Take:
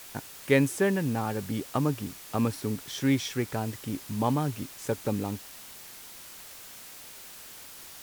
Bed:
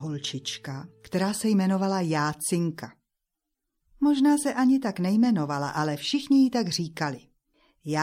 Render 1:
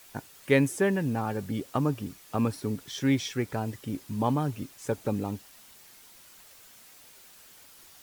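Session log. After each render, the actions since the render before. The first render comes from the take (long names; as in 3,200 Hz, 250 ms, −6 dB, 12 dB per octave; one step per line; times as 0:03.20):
broadband denoise 8 dB, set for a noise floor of −46 dBFS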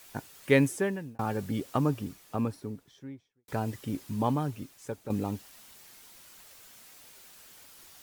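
0:00.63–0:01.19: fade out
0:01.78–0:03.48: fade out and dull
0:04.07–0:05.10: fade out, to −10.5 dB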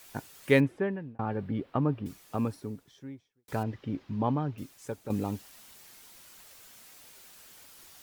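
0:00.60–0:02.06: high-frequency loss of the air 420 metres
0:03.63–0:04.58: high-frequency loss of the air 260 metres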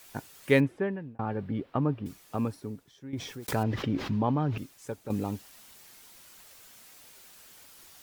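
0:03.13–0:04.58: envelope flattener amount 70%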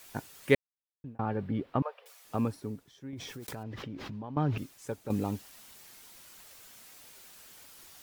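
0:00.55–0:01.04: silence
0:01.82–0:02.25: Butterworth high-pass 490 Hz 72 dB per octave
0:03.10–0:04.37: downward compressor, threshold −38 dBFS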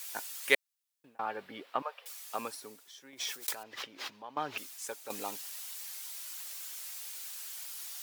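high-pass filter 640 Hz 12 dB per octave
high-shelf EQ 2,400 Hz +11 dB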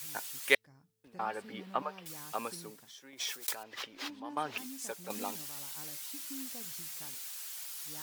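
mix in bed −26.5 dB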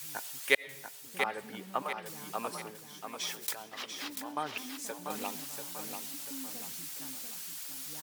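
repeating echo 690 ms, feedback 41%, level −6.5 dB
comb and all-pass reverb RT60 0.88 s, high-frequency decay 0.95×, pre-delay 50 ms, DRR 19.5 dB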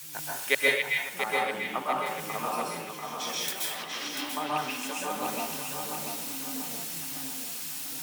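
on a send: echo through a band-pass that steps 271 ms, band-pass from 2,600 Hz, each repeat −1.4 octaves, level −3 dB
on the sum: dense smooth reverb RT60 0.59 s, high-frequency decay 0.85×, pre-delay 115 ms, DRR −4.5 dB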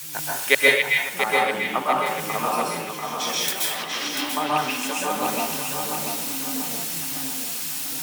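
level +7.5 dB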